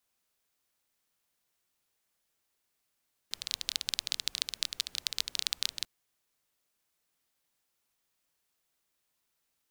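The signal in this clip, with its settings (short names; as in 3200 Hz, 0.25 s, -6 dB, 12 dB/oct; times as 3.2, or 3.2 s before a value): rain from filtered ticks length 2.54 s, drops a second 18, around 4000 Hz, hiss -23 dB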